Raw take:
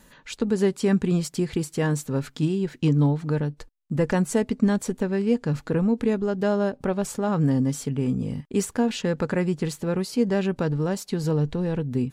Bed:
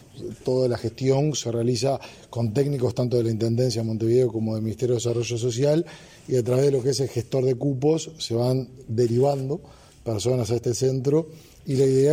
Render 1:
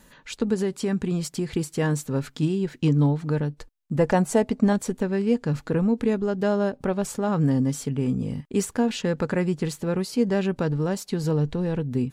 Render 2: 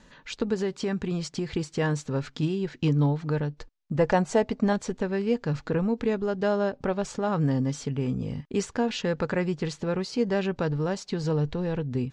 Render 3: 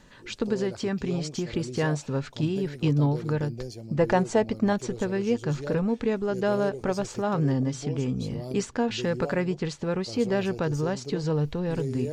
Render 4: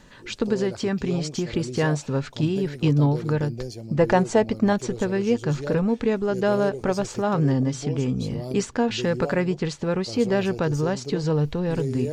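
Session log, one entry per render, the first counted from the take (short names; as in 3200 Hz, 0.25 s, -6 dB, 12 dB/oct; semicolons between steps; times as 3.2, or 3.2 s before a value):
0.54–1.54 compressor 2:1, threshold -23 dBFS; 3.99–4.73 bell 720 Hz +8.5 dB
dynamic EQ 230 Hz, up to -5 dB, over -32 dBFS, Q 1; LPF 6400 Hz 24 dB/oct
add bed -15 dB
gain +3.5 dB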